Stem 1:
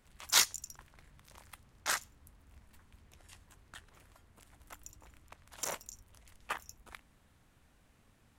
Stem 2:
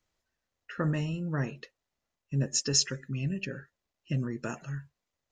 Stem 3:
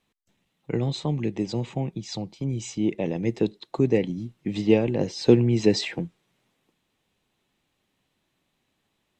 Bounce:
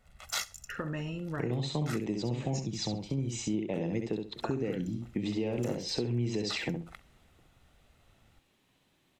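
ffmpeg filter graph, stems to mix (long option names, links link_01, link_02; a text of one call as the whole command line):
ffmpeg -i stem1.wav -i stem2.wav -i stem3.wav -filter_complex "[0:a]highshelf=frequency=4500:gain=-7,aecho=1:1:1.5:0.65,volume=0dB,asplit=2[link_01][link_02];[link_02]volume=-23.5dB[link_03];[1:a]bass=frequency=250:gain=-7,treble=frequency=4000:gain=-8,acompressor=threshold=-33dB:ratio=6,volume=2.5dB,asplit=3[link_04][link_05][link_06];[link_04]atrim=end=2.62,asetpts=PTS-STARTPTS,afade=type=out:start_time=2.616:duration=0.004:curve=hsin[link_07];[link_05]atrim=start=2.62:end=4.36,asetpts=PTS-STARTPTS,volume=0[link_08];[link_06]atrim=start=4.36,asetpts=PTS-STARTPTS,afade=type=in:duration=0.004:curve=hsin[link_09];[link_07][link_08][link_09]concat=n=3:v=0:a=1,asplit=2[link_10][link_11];[link_11]volume=-13.5dB[link_12];[2:a]alimiter=limit=-14.5dB:level=0:latency=1:release=177,adelay=700,volume=2.5dB,asplit=2[link_13][link_14];[link_14]volume=-5.5dB[link_15];[link_03][link_12][link_15]amix=inputs=3:normalize=0,aecho=0:1:66|132|198:1|0.17|0.0289[link_16];[link_01][link_10][link_13][link_16]amix=inputs=4:normalize=0,acompressor=threshold=-32dB:ratio=3" out.wav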